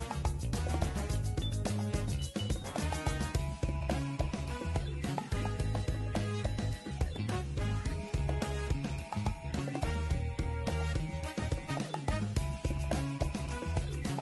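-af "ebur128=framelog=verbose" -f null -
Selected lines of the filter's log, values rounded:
Integrated loudness:
  I:         -35.9 LUFS
  Threshold: -45.9 LUFS
Loudness range:
  LRA:         0.9 LU
  Threshold: -55.9 LUFS
  LRA low:   -36.2 LUFS
  LRA high:  -35.4 LUFS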